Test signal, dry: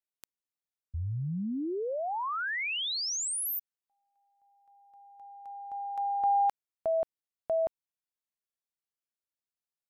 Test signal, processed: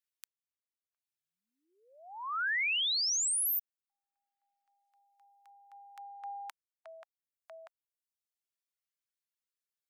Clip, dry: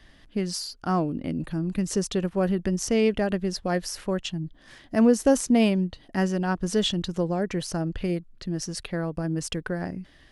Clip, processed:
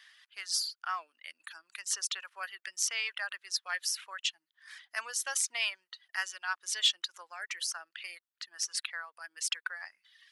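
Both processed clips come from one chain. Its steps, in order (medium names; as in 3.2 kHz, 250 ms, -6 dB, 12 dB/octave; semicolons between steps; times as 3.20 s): reverb removal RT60 1.1 s; high-pass 1.3 kHz 24 dB/octave; in parallel at -12 dB: overload inside the chain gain 23.5 dB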